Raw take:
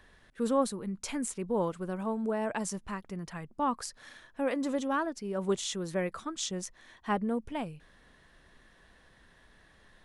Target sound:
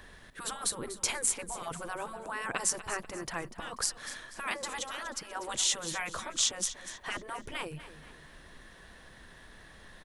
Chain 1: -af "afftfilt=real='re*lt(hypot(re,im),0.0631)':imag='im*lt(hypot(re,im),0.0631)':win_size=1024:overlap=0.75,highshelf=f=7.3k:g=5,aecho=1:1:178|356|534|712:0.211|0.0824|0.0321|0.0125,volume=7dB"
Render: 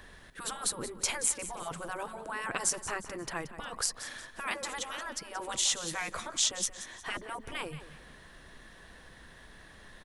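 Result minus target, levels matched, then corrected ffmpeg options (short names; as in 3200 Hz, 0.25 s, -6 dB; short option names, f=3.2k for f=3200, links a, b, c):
echo 65 ms early
-af "afftfilt=real='re*lt(hypot(re,im),0.0631)':imag='im*lt(hypot(re,im),0.0631)':win_size=1024:overlap=0.75,highshelf=f=7.3k:g=5,aecho=1:1:243|486|729|972:0.211|0.0824|0.0321|0.0125,volume=7dB"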